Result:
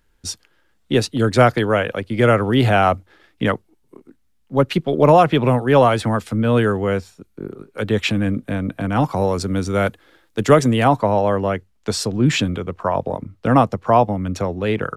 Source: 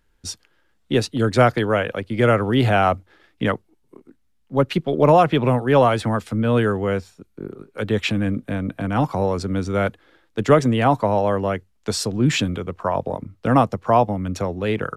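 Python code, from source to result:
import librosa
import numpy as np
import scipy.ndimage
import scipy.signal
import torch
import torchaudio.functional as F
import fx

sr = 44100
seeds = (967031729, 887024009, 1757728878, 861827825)

y = fx.high_shelf(x, sr, hz=6400.0, db=fx.steps((0.0, 2.5), (9.15, 9.5), (10.88, -2.5)))
y = y * librosa.db_to_amplitude(2.0)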